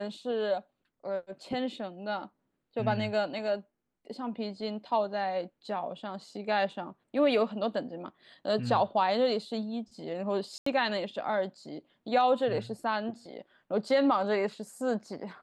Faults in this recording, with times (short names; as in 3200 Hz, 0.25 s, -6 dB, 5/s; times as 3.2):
10.58–10.66 gap 84 ms